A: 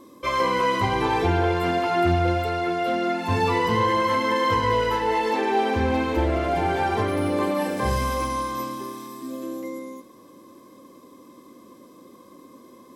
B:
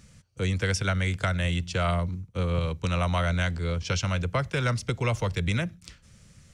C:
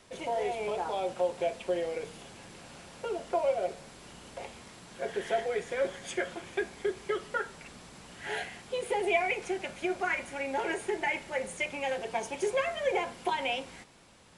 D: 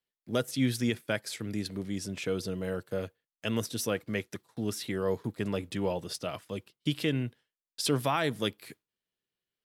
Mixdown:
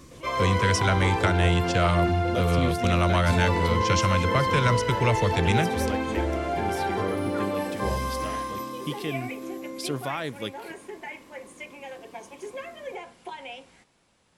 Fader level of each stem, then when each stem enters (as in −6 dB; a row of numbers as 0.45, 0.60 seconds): −4.5, +3.0, −8.0, −3.0 decibels; 0.00, 0.00, 0.00, 2.00 seconds